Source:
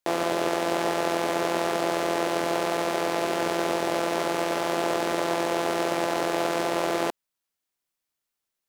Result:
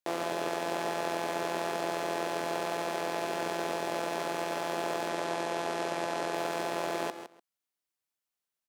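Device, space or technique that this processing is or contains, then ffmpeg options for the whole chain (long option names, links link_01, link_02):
ducked delay: -filter_complex "[0:a]asettb=1/sr,asplit=3[link_01][link_02][link_03];[link_01]atrim=end=5.094[link_04];[link_02]atrim=start=5.09:end=6.34,asetpts=PTS-STARTPTS,afade=type=in:duration=0.004:curve=qsin,afade=type=out:start_time=1.246:duration=0.004:curve=qsin,lowpass=11000[link_05];[link_03]atrim=start=6.336[link_06];[link_04][link_05]acrossfade=duration=0.004:curve1=hsin:curve2=qsin[link_07];[link_07][link_06]acrossfade=duration=0.004:curve1=qsin:curve2=hsin,asplit=3[link_08][link_09][link_10];[link_09]adelay=160,volume=-4dB[link_11];[link_10]apad=whole_len=389966[link_12];[link_11][link_12]sidechaincompress=threshold=-37dB:ratio=3:attack=40:release=390[link_13];[link_08][link_13]amix=inputs=2:normalize=0,lowshelf=frequency=62:gain=-8.5,asplit=2[link_14][link_15];[link_15]adelay=134.1,volume=-14dB,highshelf=frequency=4000:gain=-3.02[link_16];[link_14][link_16]amix=inputs=2:normalize=0,volume=-7dB"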